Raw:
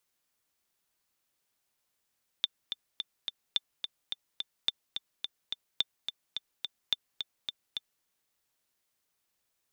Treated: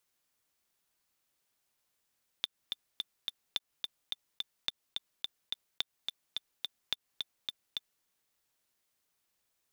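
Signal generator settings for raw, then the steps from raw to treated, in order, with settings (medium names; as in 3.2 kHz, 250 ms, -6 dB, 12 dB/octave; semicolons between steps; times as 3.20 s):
metronome 214 bpm, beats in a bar 4, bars 5, 3.56 kHz, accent 7.5 dB -13 dBFS
block-companded coder 5-bit; compression, threshold -31 dBFS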